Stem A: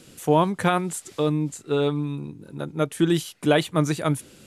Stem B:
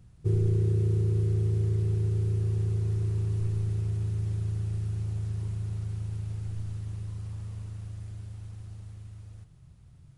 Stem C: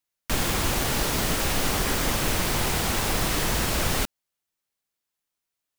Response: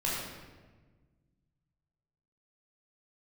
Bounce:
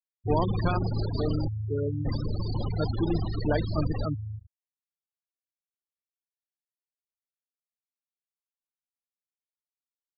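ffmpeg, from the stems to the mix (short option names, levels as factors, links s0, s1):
-filter_complex "[0:a]volume=0.398,asplit=2[s0][s1];[1:a]volume=0.501[s2];[2:a]highshelf=f=6200:t=q:w=3:g=-9,volume=0.668,asplit=3[s3][s4][s5];[s3]atrim=end=1.48,asetpts=PTS-STARTPTS,afade=t=out:st=1.476:d=0.004:c=hsin[s6];[s4]atrim=start=1.48:end=2.05,asetpts=PTS-STARTPTS,volume=0[s7];[s5]atrim=start=2.05,asetpts=PTS-STARTPTS,afade=t=in:d=0.004:c=hsin[s8];[s6][s7][s8]concat=n=3:v=0:a=1[s9];[s1]apad=whole_len=448814[s10];[s2][s10]sidechaingate=range=0.0224:threshold=0.00178:ratio=16:detection=peak[s11];[s0][s11][s9]amix=inputs=3:normalize=0,afftfilt=real='re*gte(hypot(re,im),0.0891)':imag='im*gte(hypot(re,im),0.0891)':win_size=1024:overlap=0.75"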